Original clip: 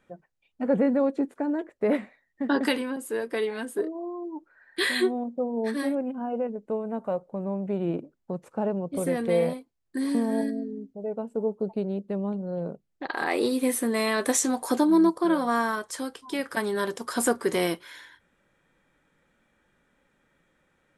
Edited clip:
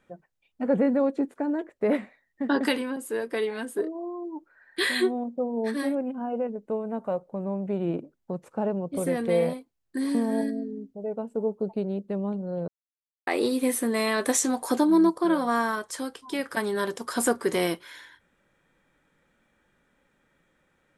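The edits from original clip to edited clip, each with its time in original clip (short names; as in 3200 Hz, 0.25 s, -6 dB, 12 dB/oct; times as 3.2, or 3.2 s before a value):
12.68–13.27 mute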